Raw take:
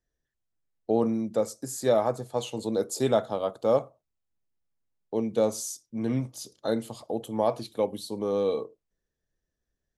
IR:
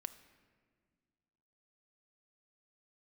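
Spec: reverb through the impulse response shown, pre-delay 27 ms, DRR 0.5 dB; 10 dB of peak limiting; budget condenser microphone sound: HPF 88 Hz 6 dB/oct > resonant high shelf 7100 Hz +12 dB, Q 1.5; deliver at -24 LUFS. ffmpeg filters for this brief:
-filter_complex "[0:a]alimiter=limit=-21dB:level=0:latency=1,asplit=2[a][b];[1:a]atrim=start_sample=2205,adelay=27[c];[b][c]afir=irnorm=-1:irlink=0,volume=3dB[d];[a][d]amix=inputs=2:normalize=0,highpass=f=88:p=1,highshelf=f=7.1k:t=q:w=1.5:g=12,volume=3.5dB"

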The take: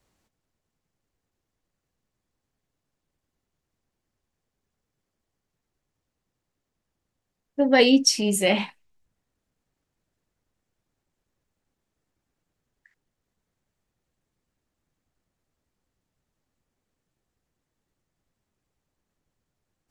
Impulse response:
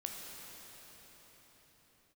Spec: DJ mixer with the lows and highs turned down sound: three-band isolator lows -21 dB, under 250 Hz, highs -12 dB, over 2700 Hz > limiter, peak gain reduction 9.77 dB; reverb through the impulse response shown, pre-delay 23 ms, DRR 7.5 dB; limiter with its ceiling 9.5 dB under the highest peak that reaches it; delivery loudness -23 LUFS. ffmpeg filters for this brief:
-filter_complex "[0:a]alimiter=limit=-14dB:level=0:latency=1,asplit=2[a][b];[1:a]atrim=start_sample=2205,adelay=23[c];[b][c]afir=irnorm=-1:irlink=0,volume=-7.5dB[d];[a][d]amix=inputs=2:normalize=0,acrossover=split=250 2700:gain=0.0891 1 0.251[e][f][g];[e][f][g]amix=inputs=3:normalize=0,volume=9dB,alimiter=limit=-12dB:level=0:latency=1"

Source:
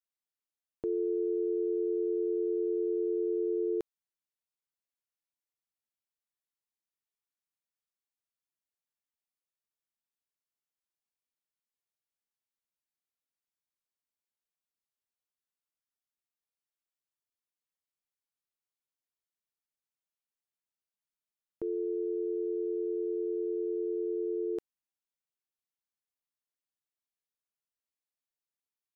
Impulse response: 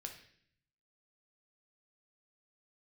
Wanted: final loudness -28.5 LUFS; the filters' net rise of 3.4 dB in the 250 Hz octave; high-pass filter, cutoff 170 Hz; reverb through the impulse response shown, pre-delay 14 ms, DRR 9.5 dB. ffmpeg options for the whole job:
-filter_complex "[0:a]highpass=170,equalizer=f=250:t=o:g=7,asplit=2[a][b];[1:a]atrim=start_sample=2205,adelay=14[c];[b][c]afir=irnorm=-1:irlink=0,volume=-6dB[d];[a][d]amix=inputs=2:normalize=0,volume=0.5dB"

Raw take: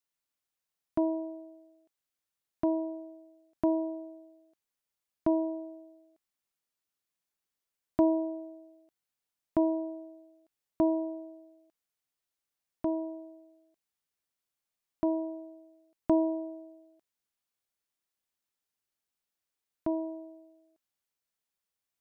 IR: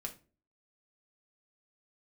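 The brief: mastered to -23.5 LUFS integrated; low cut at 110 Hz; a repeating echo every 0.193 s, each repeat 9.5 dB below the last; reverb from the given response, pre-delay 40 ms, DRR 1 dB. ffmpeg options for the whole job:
-filter_complex "[0:a]highpass=110,aecho=1:1:193|386|579|772:0.335|0.111|0.0365|0.012,asplit=2[a][b];[1:a]atrim=start_sample=2205,adelay=40[c];[b][c]afir=irnorm=-1:irlink=0,volume=0.5dB[d];[a][d]amix=inputs=2:normalize=0,volume=5.5dB"

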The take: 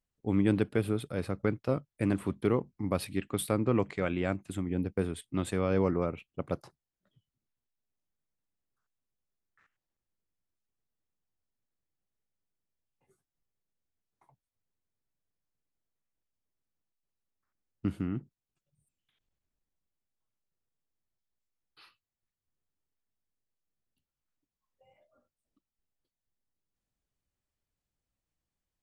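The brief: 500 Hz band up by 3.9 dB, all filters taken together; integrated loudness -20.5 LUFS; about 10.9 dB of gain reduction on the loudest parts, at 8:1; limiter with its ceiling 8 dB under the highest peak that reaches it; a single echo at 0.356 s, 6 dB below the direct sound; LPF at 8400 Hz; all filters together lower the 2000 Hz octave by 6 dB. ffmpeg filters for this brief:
-af "lowpass=8.4k,equalizer=f=500:t=o:g=5,equalizer=f=2k:t=o:g=-8.5,acompressor=threshold=-31dB:ratio=8,alimiter=level_in=2.5dB:limit=-24dB:level=0:latency=1,volume=-2.5dB,aecho=1:1:356:0.501,volume=18.5dB"

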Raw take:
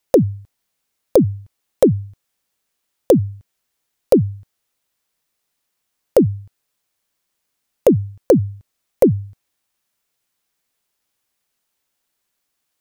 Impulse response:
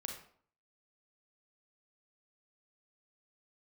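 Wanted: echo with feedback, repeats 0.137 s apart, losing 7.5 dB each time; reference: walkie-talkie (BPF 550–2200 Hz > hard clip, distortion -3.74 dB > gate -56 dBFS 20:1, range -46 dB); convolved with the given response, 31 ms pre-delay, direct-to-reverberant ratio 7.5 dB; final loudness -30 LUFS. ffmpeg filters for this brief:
-filter_complex "[0:a]aecho=1:1:137|274|411|548|685:0.422|0.177|0.0744|0.0312|0.0131,asplit=2[a][b];[1:a]atrim=start_sample=2205,adelay=31[c];[b][c]afir=irnorm=-1:irlink=0,volume=-6dB[d];[a][d]amix=inputs=2:normalize=0,highpass=550,lowpass=2.2k,asoftclip=type=hard:threshold=-22dB,agate=range=-46dB:threshold=-56dB:ratio=20"

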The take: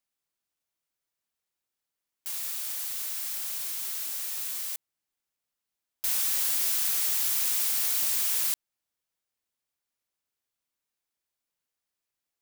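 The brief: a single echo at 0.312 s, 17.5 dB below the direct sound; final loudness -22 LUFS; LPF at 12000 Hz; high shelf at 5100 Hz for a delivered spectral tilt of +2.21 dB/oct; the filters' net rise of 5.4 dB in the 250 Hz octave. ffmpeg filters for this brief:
-af "lowpass=12k,equalizer=f=250:t=o:g=7,highshelf=f=5.1k:g=4,aecho=1:1:312:0.133,volume=6dB"

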